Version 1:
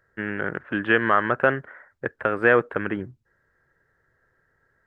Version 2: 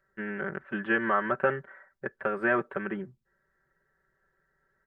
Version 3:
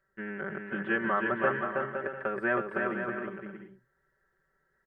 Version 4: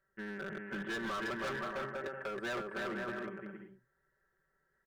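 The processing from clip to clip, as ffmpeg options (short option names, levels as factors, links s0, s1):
-filter_complex "[0:a]aecho=1:1:5.2:0.94,acrossover=split=2700[s0][s1];[s1]acompressor=threshold=0.00398:ratio=4:attack=1:release=60[s2];[s0][s2]amix=inputs=2:normalize=0,volume=0.376"
-af "aecho=1:1:320|512|627.2|696.3|737.8:0.631|0.398|0.251|0.158|0.1,volume=0.708"
-af "asoftclip=type=hard:threshold=0.0282,volume=0.631"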